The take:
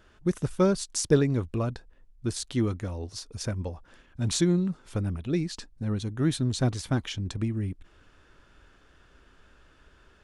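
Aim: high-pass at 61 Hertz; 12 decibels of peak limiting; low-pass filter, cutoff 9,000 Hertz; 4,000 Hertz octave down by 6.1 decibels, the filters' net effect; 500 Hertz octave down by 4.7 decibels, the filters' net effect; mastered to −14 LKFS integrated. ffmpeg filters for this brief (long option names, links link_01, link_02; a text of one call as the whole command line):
ffmpeg -i in.wav -af "highpass=61,lowpass=9000,equalizer=frequency=500:width_type=o:gain=-6.5,equalizer=frequency=4000:width_type=o:gain=-7.5,volume=20dB,alimiter=limit=-4dB:level=0:latency=1" out.wav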